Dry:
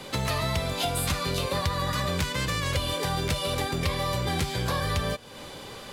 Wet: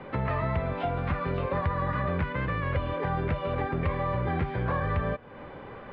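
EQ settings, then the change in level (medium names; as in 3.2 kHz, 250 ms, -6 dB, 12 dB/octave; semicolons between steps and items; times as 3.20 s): low-pass 2 kHz 24 dB/octave; 0.0 dB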